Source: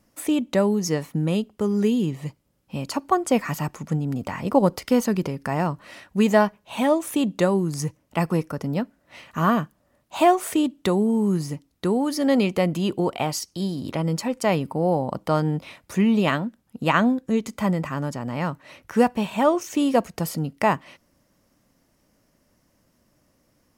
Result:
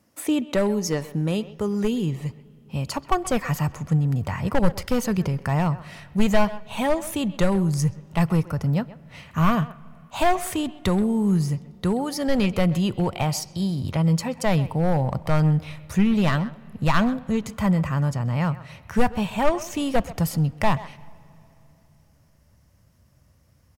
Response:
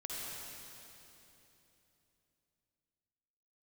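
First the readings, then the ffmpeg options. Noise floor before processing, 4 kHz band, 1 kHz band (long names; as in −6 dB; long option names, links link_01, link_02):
−67 dBFS, 0.0 dB, −2.0 dB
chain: -filter_complex "[0:a]highpass=frequency=63:width=0.5412,highpass=frequency=63:width=1.3066,asplit=2[link_01][link_02];[link_02]adelay=130,highpass=300,lowpass=3400,asoftclip=type=hard:threshold=-15dB,volume=-16dB[link_03];[link_01][link_03]amix=inputs=2:normalize=0,volume=14dB,asoftclip=hard,volume=-14dB,asplit=2[link_04][link_05];[1:a]atrim=start_sample=2205,lowpass=4100[link_06];[link_05][link_06]afir=irnorm=-1:irlink=0,volume=-23dB[link_07];[link_04][link_07]amix=inputs=2:normalize=0,asubboost=boost=12:cutoff=83"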